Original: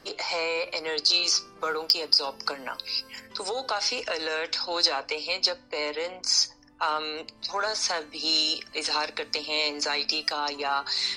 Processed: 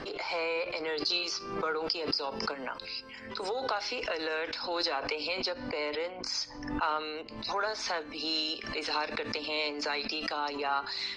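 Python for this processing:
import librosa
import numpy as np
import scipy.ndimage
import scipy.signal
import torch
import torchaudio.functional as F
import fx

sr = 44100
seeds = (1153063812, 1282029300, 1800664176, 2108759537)

y = scipy.signal.sosfilt(scipy.signal.butter(2, 3400.0, 'lowpass', fs=sr, output='sos'), x)
y = fx.peak_eq(y, sr, hz=370.0, db=3.0, octaves=0.43)
y = fx.pre_swell(y, sr, db_per_s=60.0)
y = y * librosa.db_to_amplitude(-3.5)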